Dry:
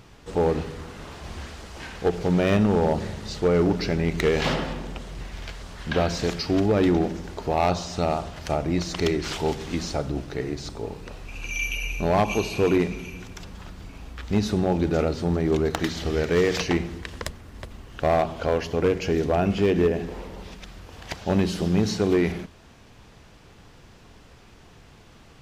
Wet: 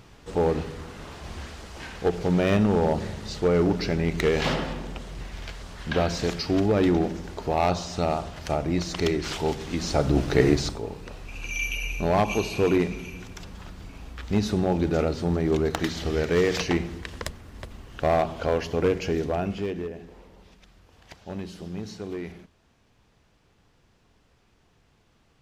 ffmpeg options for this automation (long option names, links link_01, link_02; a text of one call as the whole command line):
ffmpeg -i in.wav -af "volume=11dB,afade=type=in:start_time=9.78:duration=0.7:silence=0.251189,afade=type=out:start_time=10.48:duration=0.33:silence=0.251189,afade=type=out:start_time=18.92:duration=0.94:silence=0.251189" out.wav